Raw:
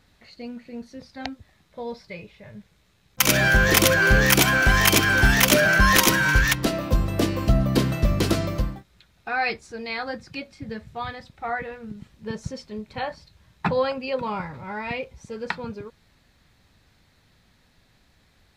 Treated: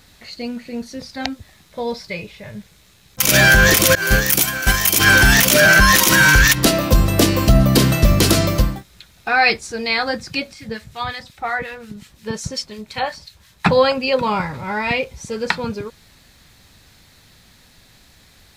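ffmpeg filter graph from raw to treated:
-filter_complex "[0:a]asettb=1/sr,asplit=3[a][b][c];[a]atrim=end=3.954[d];[b]atrim=start=3.95:end=5,asetpts=PTS-STARTPTS,afade=t=in:d=0.004:c=qsin,afade=t=out:st=1.046:d=0.004:c=qsin,highshelf=f=7.7k:g=9.5,agate=range=-33dB:threshold=-10dB:ratio=3:release=100:detection=peak[e];[c]atrim=start=4.996[f];[d][e]acrossfade=d=0.004:c1=hsin:c2=qsin[g];[g][f]acrossfade=d=0.004:c1=qsin:c2=hsin,asettb=1/sr,asplit=3[h][i][j];[h]atrim=end=10.534[k];[i]atrim=start=10.53:end=13.66,asetpts=PTS-STARTPTS,afade=t=in:d=0.004:c=qsin,afade=t=out:st=3.126:d=0.004:c=qsin,tiltshelf=f=790:g=-3,acrossover=split=1300[l][m];[l]aeval=exprs='val(0)*(1-0.7/2+0.7/2*cos(2*PI*5.6*n/s))':c=same[n];[m]aeval=exprs='val(0)*(1-0.7/2-0.7/2*cos(2*PI*5.6*n/s))':c=same[o];[n][o]amix=inputs=2:normalize=0[p];[j]atrim=start=13.656[q];[k][p]acrossfade=d=0.004:c1=hsin:c2=qsin[r];[r][q]acrossfade=d=0.004:c1=qsin:c2=hsin,highshelf=f=4k:g=10.5,alimiter=level_in=9.5dB:limit=-1dB:release=50:level=0:latency=1,volume=-1dB"

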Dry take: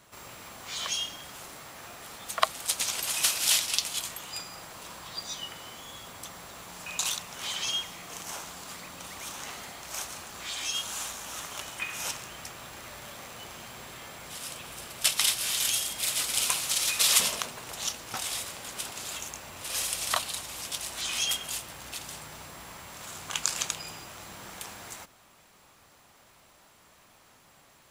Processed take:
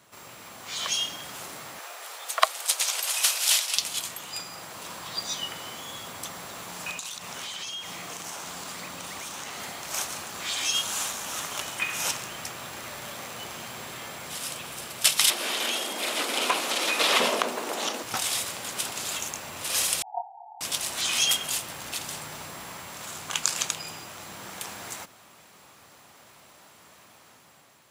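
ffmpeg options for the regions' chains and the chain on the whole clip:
-filter_complex "[0:a]asettb=1/sr,asplit=3[a][b][c];[a]atrim=end=1.794[d];[b]atrim=start=1.79:end=3.77,asetpts=PTS-STARTPTS,afade=t=in:d=0.004:c=qsin,afade=t=out:st=1.976:d=0.004:c=qsin,highpass=f=470:w=0.5412,highpass=f=470:w=1.3066,asoftclip=type=hard:threshold=-8dB[e];[c]atrim=start=3.766[f];[d][e]acrossfade=d=0.004:c1=hsin:c2=qsin[g];[g][f]acrossfade=d=0.004:c1=qsin:c2=hsin,asettb=1/sr,asplit=3[h][i][j];[h]atrim=end=6.914[k];[i]atrim=start=6.91:end=9.6,asetpts=PTS-STARTPTS,afade=t=in:d=0.004:c=qsin,afade=t=out:st=2.686:d=0.004:c=qsin,acompressor=threshold=-38dB:ratio=8:attack=3.2:release=140:knee=1:detection=peak,equalizer=f=12k:t=o:w=0.22:g=-5[l];[j]atrim=start=9.596[m];[k][l]acrossfade=d=0.004:c1=hsin:c2=qsin[n];[n][m]acrossfade=d=0.004:c1=qsin:c2=hsin,asettb=1/sr,asplit=3[o][p][q];[o]atrim=end=15.304[r];[p]atrim=start=15.3:end=18.03,asetpts=PTS-STARTPTS,afade=t=in:d=0.004:c=qsin,afade=t=out:st=2.726:d=0.004:c=qsin,equalizer=f=320:w=0.35:g=10.5,acrossover=split=3700[s][t];[t]acompressor=threshold=-38dB:ratio=4:attack=1:release=60[u];[s][u]amix=inputs=2:normalize=0,highpass=f=240:w=0.5412,highpass=f=240:w=1.3066[v];[q]atrim=start=18.026[w];[r][v]acrossfade=d=0.004:c1=hsin:c2=qsin[x];[x][w]acrossfade=d=0.004:c1=qsin:c2=hsin,asettb=1/sr,asplit=3[y][z][aa];[y]atrim=end=20.024[ab];[z]atrim=start=20.02:end=20.61,asetpts=PTS-STARTPTS,afade=t=in:d=0.004:c=qsin,afade=t=out:st=0.586:d=0.004:c=qsin,asuperpass=centerf=800:order=20:qfactor=3.2,asplit=2[ac][ad];[ad]adelay=27,volume=-2.5dB[ae];[ac][ae]amix=inputs=2:normalize=0,atrim=end_sample=26019[af];[aa]atrim=start=20.606[ag];[ab][af]acrossfade=d=0.004:c1=hsin:c2=qsin[ah];[ah][ag]acrossfade=d=0.004:c1=qsin:c2=hsin,highpass=99,dynaudnorm=f=350:g=5:m=5.5dB"

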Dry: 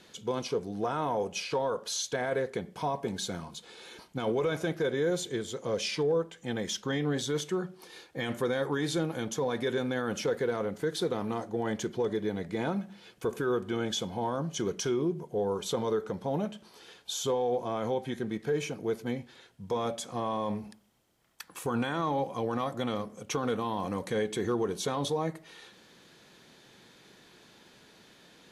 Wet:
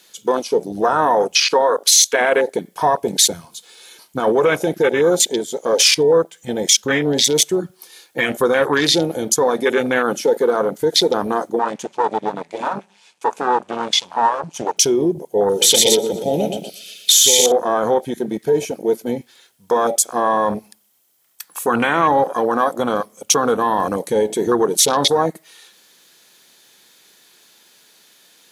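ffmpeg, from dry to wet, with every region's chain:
-filter_complex "[0:a]asettb=1/sr,asplit=3[a][b][c];[a]atrim=end=11.594[d];[b]atrim=start=11.59:end=14.77,asetpts=PTS-STARTPTS,afade=t=in:d=0.004:c=qsin,afade=t=out:st=3.176:d=0.004:c=qsin,aeval=exprs='max(val(0),0)':c=same,highpass=f=100:w=0.5412,highpass=f=100:w=1.3066,equalizer=f=350:t=q:w=4:g=-5,equalizer=f=900:t=q:w=4:g=9,equalizer=f=2.5k:t=q:w=4:g=6,lowpass=f=8.5k:w=0.5412,lowpass=f=8.5k:w=1.3066[e];[c]atrim=start=14.766[f];[d][e]acrossfade=d=0.004:c1=hsin:c2=qsin[g];[g][f]acrossfade=d=0.004:c1=qsin:c2=hsin,asettb=1/sr,asplit=3[h][i][j];[h]atrim=end=15.494[k];[i]atrim=start=15.49:end=17.52,asetpts=PTS-STARTPTS,afade=t=in:d=0.004:c=qsin,afade=t=out:st=2.026:d=0.004:c=qsin,asuperstop=centerf=950:order=8:qfactor=1.8,highshelf=f=2.1k:t=q:w=3:g=6.5,aecho=1:1:120|240|360|480|600|720:0.501|0.251|0.125|0.0626|0.0313|0.0157,atrim=end_sample=89523[l];[j]atrim=start=17.516[m];[k][l]acrossfade=d=0.004:c1=hsin:c2=qsin[n];[n][m]acrossfade=d=0.004:c1=qsin:c2=hsin,aemphasis=mode=production:type=riaa,afwtdn=0.02,alimiter=level_in=18dB:limit=-1dB:release=50:level=0:latency=1,volume=-1dB"

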